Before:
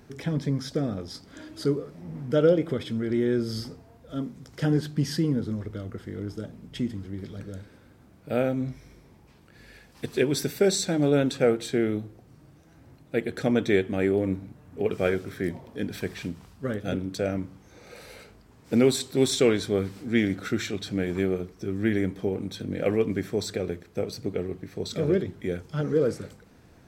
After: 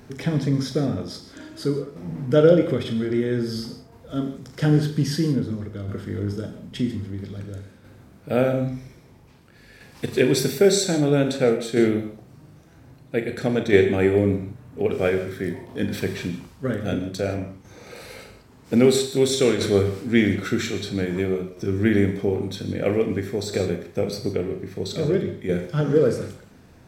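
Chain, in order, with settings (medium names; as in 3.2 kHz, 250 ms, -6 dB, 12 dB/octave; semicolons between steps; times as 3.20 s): flutter echo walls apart 6.8 m, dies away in 0.25 s; gated-style reverb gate 190 ms flat, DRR 8 dB; tremolo saw down 0.51 Hz, depth 45%; trim +5.5 dB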